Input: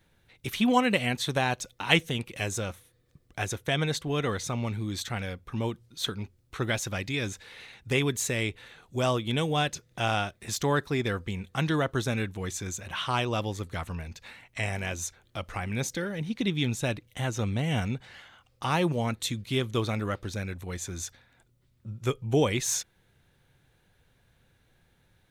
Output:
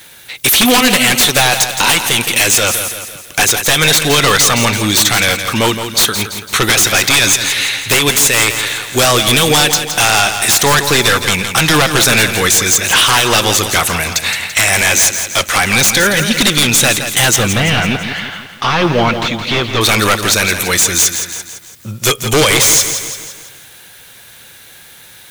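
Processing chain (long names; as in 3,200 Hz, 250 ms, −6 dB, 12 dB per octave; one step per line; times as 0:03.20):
spectral tilt +4 dB per octave
downward compressor 5 to 1, threshold −26 dBFS, peak gain reduction 13.5 dB
sine wavefolder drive 17 dB, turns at −10.5 dBFS
0:17.36–0:19.81: high-frequency loss of the air 230 metres
feedback echo at a low word length 168 ms, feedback 55%, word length 7 bits, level −8.5 dB
level +4.5 dB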